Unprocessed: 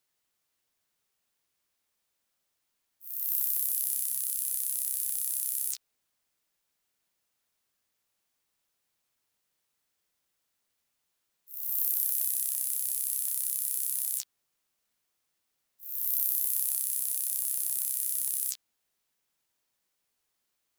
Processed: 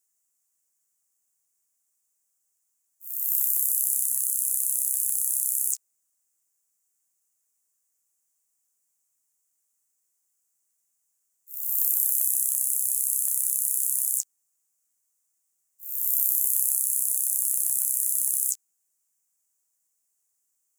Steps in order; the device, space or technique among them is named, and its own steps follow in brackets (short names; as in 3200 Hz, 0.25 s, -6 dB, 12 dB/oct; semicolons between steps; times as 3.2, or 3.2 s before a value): budget condenser microphone (HPF 110 Hz; resonant high shelf 5300 Hz +12 dB, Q 3); gain -8.5 dB